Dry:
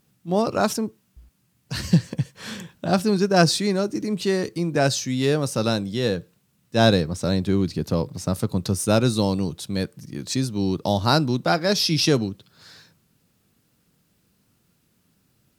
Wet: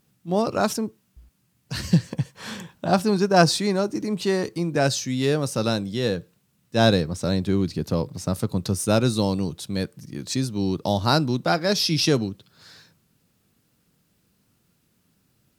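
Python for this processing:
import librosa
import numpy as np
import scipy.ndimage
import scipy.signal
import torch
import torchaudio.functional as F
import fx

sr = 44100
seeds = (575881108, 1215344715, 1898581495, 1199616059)

y = fx.peak_eq(x, sr, hz=900.0, db=5.5, octaves=0.89, at=(2.12, 4.63))
y = y * 10.0 ** (-1.0 / 20.0)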